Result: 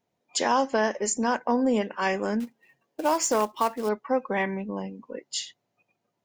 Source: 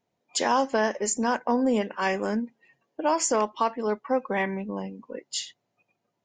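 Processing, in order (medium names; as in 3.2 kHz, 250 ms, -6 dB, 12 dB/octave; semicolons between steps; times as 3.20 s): 2.40–3.89 s: short-mantissa float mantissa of 2-bit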